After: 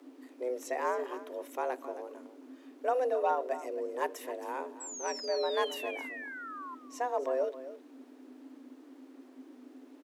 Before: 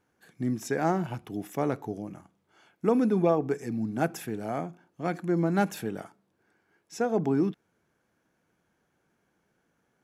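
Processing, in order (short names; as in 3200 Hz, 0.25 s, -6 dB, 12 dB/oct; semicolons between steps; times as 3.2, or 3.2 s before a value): added noise brown -46 dBFS; frequency shift +250 Hz; painted sound fall, 4.8–6.75, 1000–7900 Hz -37 dBFS; on a send: echo 0.268 s -14 dB; on the sum: gain -6 dB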